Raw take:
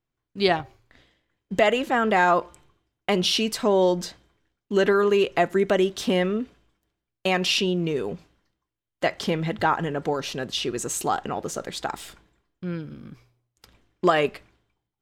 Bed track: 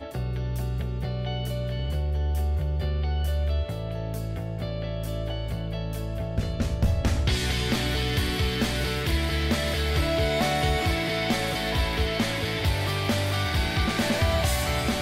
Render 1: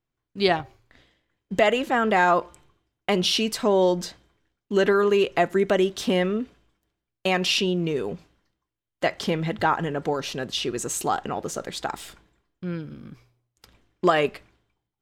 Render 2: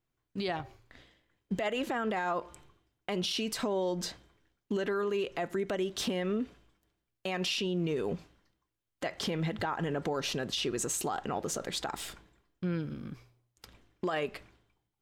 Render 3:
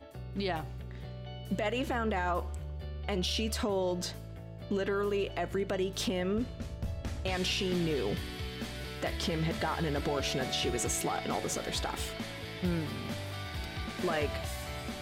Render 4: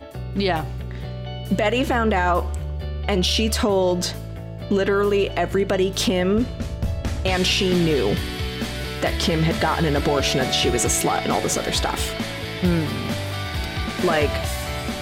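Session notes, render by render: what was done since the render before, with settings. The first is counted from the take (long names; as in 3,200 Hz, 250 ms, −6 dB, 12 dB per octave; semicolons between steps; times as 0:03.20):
no processing that can be heard
downward compressor 6 to 1, threshold −26 dBFS, peak gain reduction 12 dB; brickwall limiter −23.5 dBFS, peak gain reduction 9 dB
mix in bed track −13.5 dB
level +12 dB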